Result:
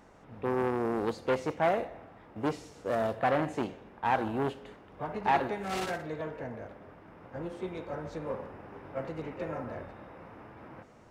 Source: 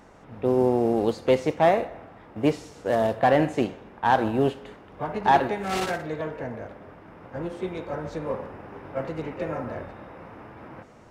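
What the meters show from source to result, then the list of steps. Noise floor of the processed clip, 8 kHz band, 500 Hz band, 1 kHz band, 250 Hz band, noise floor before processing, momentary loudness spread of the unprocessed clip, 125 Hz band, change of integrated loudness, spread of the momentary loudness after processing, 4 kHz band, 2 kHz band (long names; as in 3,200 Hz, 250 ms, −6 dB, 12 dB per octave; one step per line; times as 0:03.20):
−55 dBFS, −6.5 dB, −8.0 dB, −7.0 dB, −8.0 dB, −49 dBFS, 21 LU, −7.5 dB, −7.5 dB, 20 LU, −7.5 dB, −5.5 dB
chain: saturating transformer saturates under 890 Hz
level −5.5 dB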